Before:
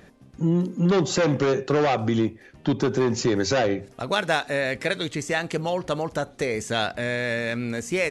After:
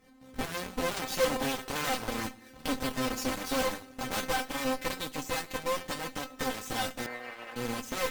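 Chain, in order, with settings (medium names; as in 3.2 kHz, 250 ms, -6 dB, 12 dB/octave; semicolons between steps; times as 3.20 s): square wave that keeps the level; recorder AGC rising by 43 dB/s; feedback comb 260 Hz, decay 0.17 s, harmonics all, mix 100%; on a send at -13.5 dB: reverberation RT60 1.0 s, pre-delay 22 ms; on the sum: Chebyshev shaper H 8 -10 dB, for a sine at -13.5 dBFS; 7.06–7.56 s: three-band isolator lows -17 dB, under 420 Hz, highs -19 dB, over 2.5 kHz; trim -5.5 dB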